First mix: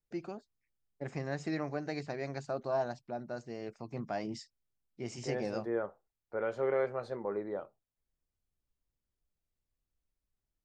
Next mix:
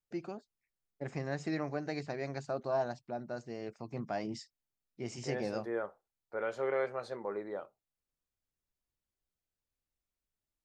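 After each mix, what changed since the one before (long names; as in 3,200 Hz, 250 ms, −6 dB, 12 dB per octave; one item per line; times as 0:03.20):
second voice: add spectral tilt +2 dB per octave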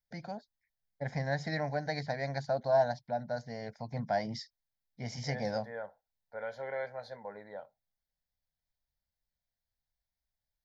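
first voice +7.0 dB
master: add phaser with its sweep stopped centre 1,800 Hz, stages 8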